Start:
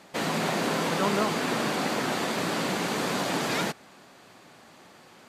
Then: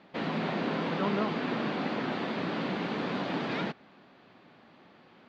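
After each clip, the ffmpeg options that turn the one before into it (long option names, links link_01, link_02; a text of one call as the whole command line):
ffmpeg -i in.wav -af "lowpass=frequency=3900:width=0.5412,lowpass=frequency=3900:width=1.3066,equalizer=frequency=230:width=0.95:gain=5,volume=-6dB" out.wav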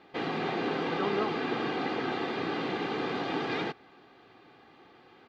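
ffmpeg -i in.wav -af "aecho=1:1:2.5:0.58" out.wav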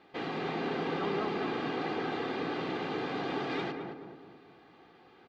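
ffmpeg -i in.wav -filter_complex "[0:a]asplit=2[link_01][link_02];[link_02]asoftclip=type=tanh:threshold=-28dB,volume=-8dB[link_03];[link_01][link_03]amix=inputs=2:normalize=0,asplit=2[link_04][link_05];[link_05]adelay=217,lowpass=frequency=1100:poles=1,volume=-3.5dB,asplit=2[link_06][link_07];[link_07]adelay=217,lowpass=frequency=1100:poles=1,volume=0.51,asplit=2[link_08][link_09];[link_09]adelay=217,lowpass=frequency=1100:poles=1,volume=0.51,asplit=2[link_10][link_11];[link_11]adelay=217,lowpass=frequency=1100:poles=1,volume=0.51,asplit=2[link_12][link_13];[link_13]adelay=217,lowpass=frequency=1100:poles=1,volume=0.51,asplit=2[link_14][link_15];[link_15]adelay=217,lowpass=frequency=1100:poles=1,volume=0.51,asplit=2[link_16][link_17];[link_17]adelay=217,lowpass=frequency=1100:poles=1,volume=0.51[link_18];[link_04][link_06][link_08][link_10][link_12][link_14][link_16][link_18]amix=inputs=8:normalize=0,volume=-6dB" out.wav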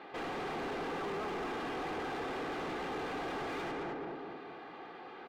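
ffmpeg -i in.wav -filter_complex "[0:a]asplit=2[link_01][link_02];[link_02]highpass=frequency=720:poles=1,volume=31dB,asoftclip=type=tanh:threshold=-21.5dB[link_03];[link_01][link_03]amix=inputs=2:normalize=0,lowpass=frequency=1300:poles=1,volume=-6dB,volume=-9dB" out.wav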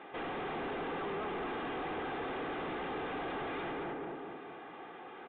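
ffmpeg -i in.wav -af "aresample=8000,aresample=44100" out.wav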